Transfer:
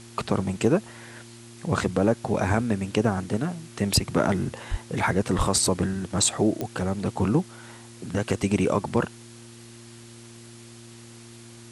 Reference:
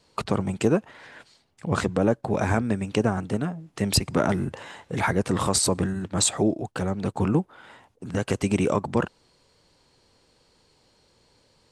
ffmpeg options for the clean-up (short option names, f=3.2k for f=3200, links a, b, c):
-filter_complex "[0:a]adeclick=t=4,bandreject=f=116.5:t=h:w=4,bandreject=f=233:t=h:w=4,bandreject=f=349.5:t=h:w=4,asplit=3[a][b][c];[a]afade=t=out:st=4.7:d=0.02[d];[b]highpass=f=140:w=0.5412,highpass=f=140:w=1.3066,afade=t=in:st=4.7:d=0.02,afade=t=out:st=4.82:d=0.02[e];[c]afade=t=in:st=4.82:d=0.02[f];[d][e][f]amix=inputs=3:normalize=0,asplit=3[g][h][i];[g]afade=t=out:st=5.37:d=0.02[j];[h]highpass=f=140:w=0.5412,highpass=f=140:w=1.3066,afade=t=in:st=5.37:d=0.02,afade=t=out:st=5.49:d=0.02[k];[i]afade=t=in:st=5.49:d=0.02[l];[j][k][l]amix=inputs=3:normalize=0,afwtdn=0.004"